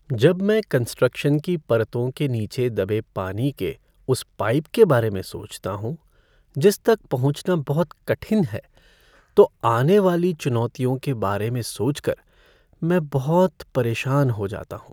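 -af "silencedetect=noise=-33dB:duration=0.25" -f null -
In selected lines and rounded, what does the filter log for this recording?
silence_start: 3.73
silence_end: 4.08 | silence_duration: 0.36
silence_start: 5.95
silence_end: 6.55 | silence_duration: 0.60
silence_start: 8.59
silence_end: 9.37 | silence_duration: 0.78
silence_start: 12.14
silence_end: 12.82 | silence_duration: 0.68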